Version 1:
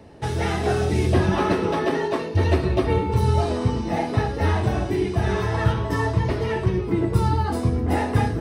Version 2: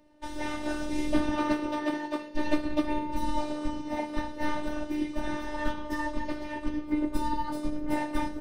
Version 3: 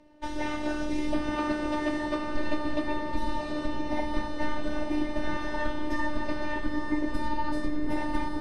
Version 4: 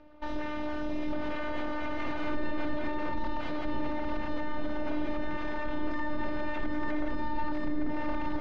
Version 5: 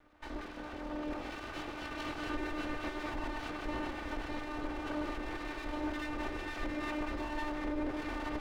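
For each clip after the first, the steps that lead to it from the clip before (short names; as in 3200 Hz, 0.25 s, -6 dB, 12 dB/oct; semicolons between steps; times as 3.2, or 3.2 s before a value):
robotiser 300 Hz; upward expander 1.5:1, over -38 dBFS; gain -2 dB
compressor, threshold -27 dBFS, peak gain reduction 9.5 dB; air absorption 53 m; diffused feedback echo 0.919 s, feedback 41%, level -4 dB; gain +4 dB
limiter -24.5 dBFS, peak gain reduction 11.5 dB; full-wave rectifier; air absorption 210 m; gain +4 dB
minimum comb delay 2.6 ms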